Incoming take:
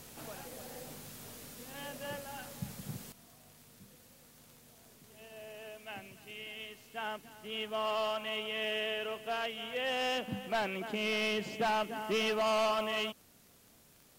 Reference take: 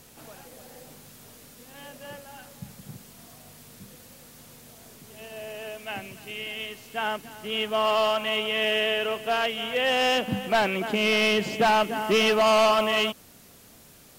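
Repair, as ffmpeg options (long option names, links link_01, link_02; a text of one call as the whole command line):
ffmpeg -i in.wav -af "adeclick=threshold=4,asetnsamples=nb_out_samples=441:pad=0,asendcmd='3.12 volume volume 10.5dB',volume=0dB" out.wav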